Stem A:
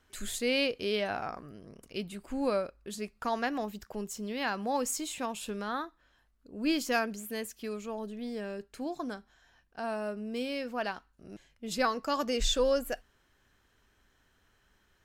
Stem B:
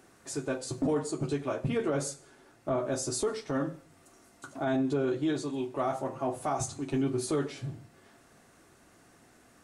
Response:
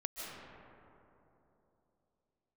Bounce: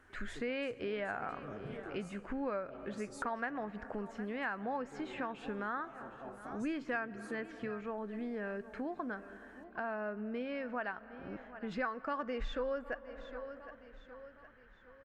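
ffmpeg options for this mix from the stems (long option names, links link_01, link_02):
-filter_complex "[0:a]lowpass=frequency=1700:width_type=q:width=2.2,volume=1.5dB,asplit=3[link_01][link_02][link_03];[link_02]volume=-20dB[link_04];[link_03]volume=-21dB[link_05];[1:a]bass=frequency=250:gain=-1,treble=frequency=4000:gain=-4,alimiter=level_in=2.5dB:limit=-24dB:level=0:latency=1:release=418,volume=-2.5dB,volume=-12.5dB[link_06];[2:a]atrim=start_sample=2205[link_07];[link_04][link_07]afir=irnorm=-1:irlink=0[link_08];[link_05]aecho=0:1:761|1522|2283|3044|3805|4566:1|0.41|0.168|0.0689|0.0283|0.0116[link_09];[link_01][link_06][link_08][link_09]amix=inputs=4:normalize=0,acompressor=threshold=-38dB:ratio=3"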